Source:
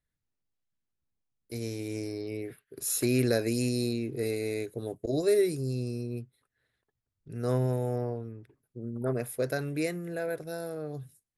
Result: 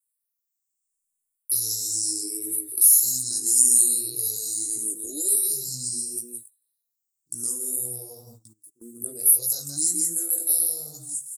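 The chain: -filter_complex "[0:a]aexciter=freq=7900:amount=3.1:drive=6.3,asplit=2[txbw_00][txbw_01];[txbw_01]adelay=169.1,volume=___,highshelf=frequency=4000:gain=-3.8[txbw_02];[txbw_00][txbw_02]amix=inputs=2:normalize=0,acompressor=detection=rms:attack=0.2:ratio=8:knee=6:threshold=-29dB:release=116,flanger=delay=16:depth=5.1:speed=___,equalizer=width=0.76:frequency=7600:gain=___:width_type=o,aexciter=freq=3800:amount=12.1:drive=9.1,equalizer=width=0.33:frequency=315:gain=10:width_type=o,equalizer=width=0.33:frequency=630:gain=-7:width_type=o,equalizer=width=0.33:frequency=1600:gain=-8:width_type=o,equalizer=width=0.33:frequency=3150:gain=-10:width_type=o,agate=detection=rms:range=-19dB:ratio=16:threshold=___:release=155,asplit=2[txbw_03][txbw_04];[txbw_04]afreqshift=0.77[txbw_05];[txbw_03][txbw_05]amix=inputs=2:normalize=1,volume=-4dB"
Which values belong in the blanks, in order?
-6dB, 1.9, 10.5, -38dB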